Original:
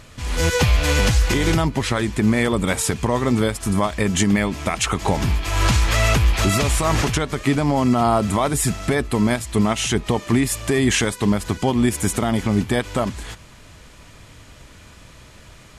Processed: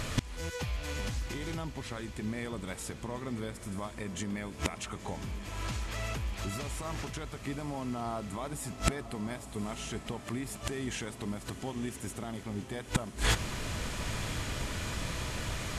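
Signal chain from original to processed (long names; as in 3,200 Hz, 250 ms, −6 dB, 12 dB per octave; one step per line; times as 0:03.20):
gate with flip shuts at −20 dBFS, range −27 dB
feedback delay with all-pass diffusion 967 ms, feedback 62%, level −12 dB
level +8 dB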